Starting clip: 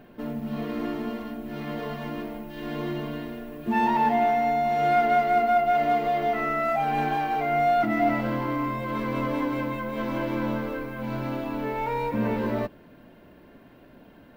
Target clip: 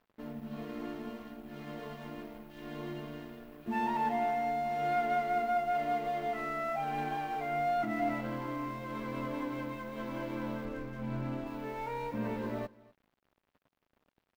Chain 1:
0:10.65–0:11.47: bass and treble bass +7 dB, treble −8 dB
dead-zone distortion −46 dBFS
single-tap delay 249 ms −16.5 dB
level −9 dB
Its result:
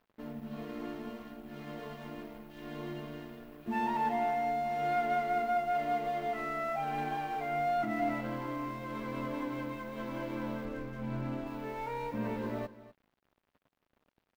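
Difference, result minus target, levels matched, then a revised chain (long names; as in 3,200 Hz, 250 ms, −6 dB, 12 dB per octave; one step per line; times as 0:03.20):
echo-to-direct +6 dB
0:10.65–0:11.47: bass and treble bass +7 dB, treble −8 dB
dead-zone distortion −46 dBFS
single-tap delay 249 ms −22.5 dB
level −9 dB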